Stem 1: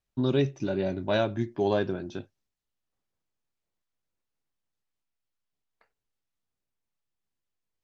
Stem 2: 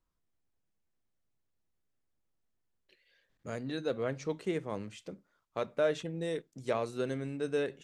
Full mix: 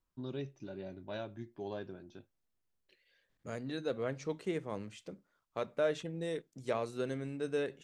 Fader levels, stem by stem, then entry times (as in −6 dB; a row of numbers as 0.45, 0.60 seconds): −16.0, −2.5 decibels; 0.00, 0.00 seconds